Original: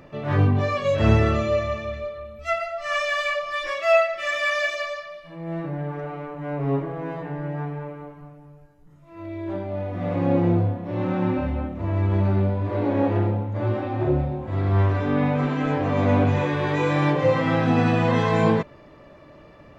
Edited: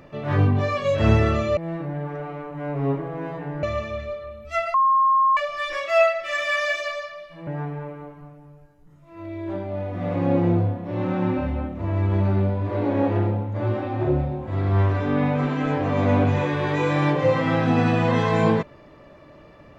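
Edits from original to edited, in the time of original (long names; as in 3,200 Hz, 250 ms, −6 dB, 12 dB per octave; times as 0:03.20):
0:02.68–0:03.31: beep over 1,070 Hz −14.5 dBFS
0:05.41–0:07.47: move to 0:01.57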